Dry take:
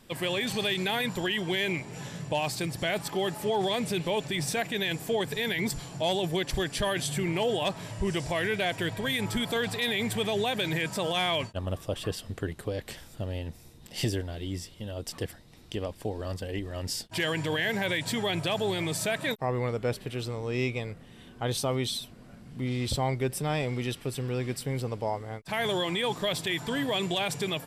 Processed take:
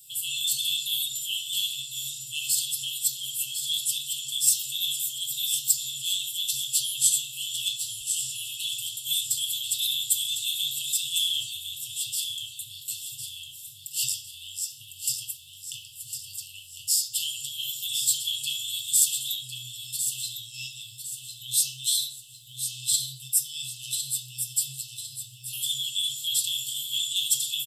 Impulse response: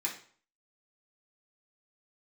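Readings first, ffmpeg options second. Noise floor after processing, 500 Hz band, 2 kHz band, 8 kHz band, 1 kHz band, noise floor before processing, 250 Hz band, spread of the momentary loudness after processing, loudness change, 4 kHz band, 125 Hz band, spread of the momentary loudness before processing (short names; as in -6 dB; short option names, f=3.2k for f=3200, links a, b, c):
-46 dBFS, under -40 dB, -11.5 dB, +15.0 dB, under -40 dB, -51 dBFS, under -30 dB, 13 LU, +3.5 dB, +6.0 dB, -17.5 dB, 9 LU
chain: -filter_complex "[0:a]aemphasis=mode=production:type=bsi,aecho=1:1:1054|2108|3162|4216:0.398|0.155|0.0606|0.0236,acrossover=split=280|5600[a][b][c];[a]acompressor=threshold=-50dB:ratio=4[d];[d][b][c]amix=inputs=3:normalize=0[e];[1:a]atrim=start_sample=2205[f];[e][f]afir=irnorm=-1:irlink=0,afftfilt=real='re*(1-between(b*sr/4096,150,2600))':imag='im*(1-between(b*sr/4096,150,2600))':win_size=4096:overlap=0.75"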